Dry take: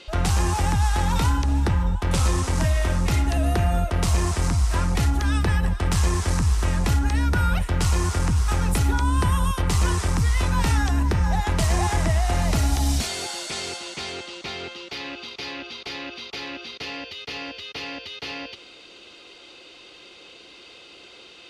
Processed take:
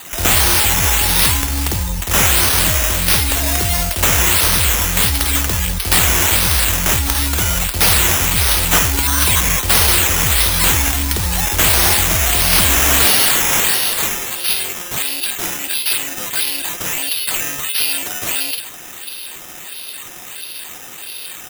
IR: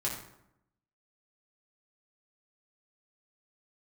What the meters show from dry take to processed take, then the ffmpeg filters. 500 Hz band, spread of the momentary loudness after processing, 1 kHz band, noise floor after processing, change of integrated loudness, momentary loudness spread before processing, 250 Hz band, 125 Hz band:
+5.5 dB, 17 LU, +6.0 dB, -33 dBFS, +10.5 dB, 11 LU, +1.5 dB, 0.0 dB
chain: -filter_complex "[0:a]crystalizer=i=4.5:c=0,equalizer=f=1.5k:t=o:w=1.1:g=-9,acrossover=split=3300[a][b];[a]adelay=50[c];[c][b]amix=inputs=2:normalize=0,acrusher=samples=8:mix=1:aa=0.000001:lfo=1:lforange=4.8:lforate=1.5,crystalizer=i=6:c=0,asoftclip=type=hard:threshold=-1.5dB"

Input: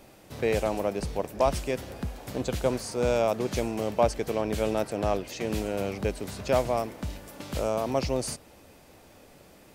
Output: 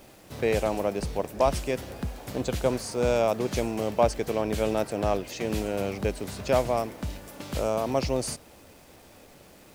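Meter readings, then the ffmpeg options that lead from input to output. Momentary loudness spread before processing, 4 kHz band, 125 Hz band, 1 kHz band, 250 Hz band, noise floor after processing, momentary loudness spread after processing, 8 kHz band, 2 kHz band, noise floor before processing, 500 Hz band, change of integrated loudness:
10 LU, +1.0 dB, +1.0 dB, +1.0 dB, +1.0 dB, -53 dBFS, 10 LU, +1.0 dB, +1.0 dB, -54 dBFS, +1.0 dB, +1.0 dB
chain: -af "acrusher=bits=8:mix=0:aa=0.5,volume=1dB"

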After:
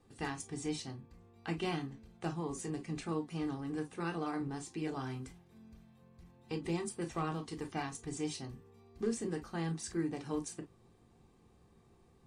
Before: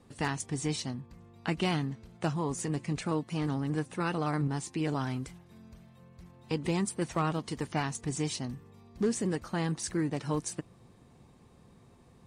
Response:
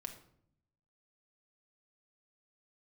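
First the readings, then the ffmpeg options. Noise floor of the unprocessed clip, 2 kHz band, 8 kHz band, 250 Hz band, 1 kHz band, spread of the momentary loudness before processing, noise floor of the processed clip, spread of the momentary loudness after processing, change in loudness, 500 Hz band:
-59 dBFS, -6.5 dB, -7.0 dB, -5.5 dB, -6.5 dB, 8 LU, -65 dBFS, 12 LU, -6.5 dB, -5.0 dB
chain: -filter_complex "[1:a]atrim=start_sample=2205,atrim=end_sample=4410,asetrate=74970,aresample=44100[a];[0:a][a]afir=irnorm=-1:irlink=0,volume=1dB"

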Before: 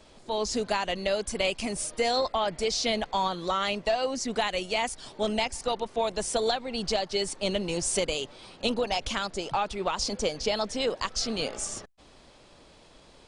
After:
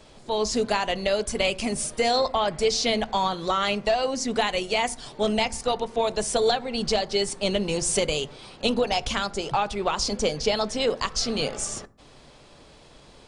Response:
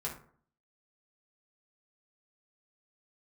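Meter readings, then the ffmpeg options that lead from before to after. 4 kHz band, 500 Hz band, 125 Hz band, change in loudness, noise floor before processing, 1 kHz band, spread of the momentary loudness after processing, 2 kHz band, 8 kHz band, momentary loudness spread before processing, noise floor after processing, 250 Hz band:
+3.5 dB, +4.0 dB, +5.0 dB, +4.0 dB, -55 dBFS, +3.5 dB, 5 LU, +3.5 dB, +3.5 dB, 4 LU, -51 dBFS, +4.5 dB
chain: -filter_complex "[0:a]asplit=2[a][b];[1:a]atrim=start_sample=2205,lowshelf=f=270:g=9[c];[b][c]afir=irnorm=-1:irlink=0,volume=-15dB[d];[a][d]amix=inputs=2:normalize=0,volume=2.5dB"

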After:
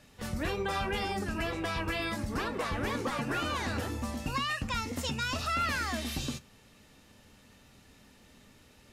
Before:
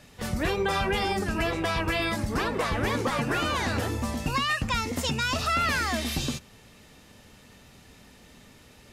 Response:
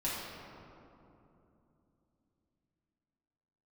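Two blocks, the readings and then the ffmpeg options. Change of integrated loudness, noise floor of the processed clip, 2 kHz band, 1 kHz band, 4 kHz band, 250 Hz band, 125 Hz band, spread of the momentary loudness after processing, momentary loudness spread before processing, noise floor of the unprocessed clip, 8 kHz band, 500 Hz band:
-6.0 dB, -59 dBFS, -6.0 dB, -5.5 dB, -6.0 dB, -5.0 dB, -6.0 dB, 5 LU, 5 LU, -54 dBFS, -6.0 dB, -6.5 dB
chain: -filter_complex "[0:a]asplit=2[a][b];[1:a]atrim=start_sample=2205,atrim=end_sample=3087,asetrate=66150,aresample=44100[c];[b][c]afir=irnorm=-1:irlink=0,volume=-11dB[d];[a][d]amix=inputs=2:normalize=0,volume=-7dB"

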